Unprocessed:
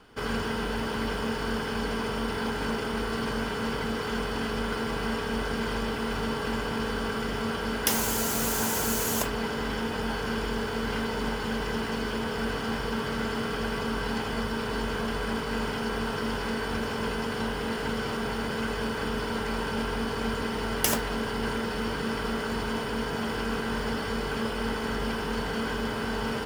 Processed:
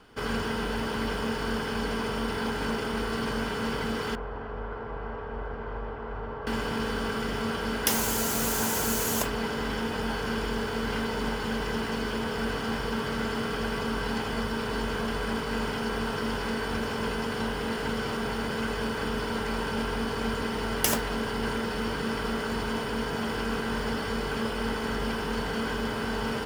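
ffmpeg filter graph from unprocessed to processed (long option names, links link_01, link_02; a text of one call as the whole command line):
ffmpeg -i in.wav -filter_complex "[0:a]asettb=1/sr,asplit=3[link_01][link_02][link_03];[link_01]atrim=end=4.154[link_04];[link_02]atrim=start=4.15:end=6.47,asetpts=PTS-STARTPTS,afade=type=in:duration=0.004:curve=qsin,afade=type=out:start_time=2.316:duration=0.004:curve=qsin,lowpass=1000,equalizer=frequency=220:width_type=o:width=1.5:gain=-13[link_05];[link_03]atrim=start=6.466[link_06];[link_04][link_05]acrossfade=duration=0.004:curve1=hsin:curve2=qsin[link_07];[link_07][link_06]acrossfade=duration=0.004:curve1=qsin:curve2=hsin" out.wav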